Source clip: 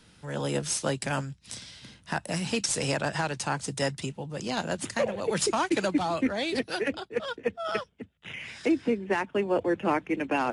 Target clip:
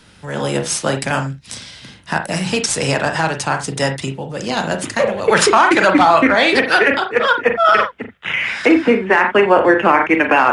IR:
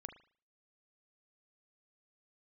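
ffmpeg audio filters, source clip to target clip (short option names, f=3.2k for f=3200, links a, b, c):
-filter_complex "[0:a]asetnsamples=n=441:p=0,asendcmd='5.28 equalizer g 14.5',equalizer=f=1.4k:t=o:w=2.6:g=3[a];[1:a]atrim=start_sample=2205,atrim=end_sample=3969[b];[a][b]afir=irnorm=-1:irlink=0,alimiter=level_in=15.5dB:limit=-1dB:release=50:level=0:latency=1,volume=-1dB"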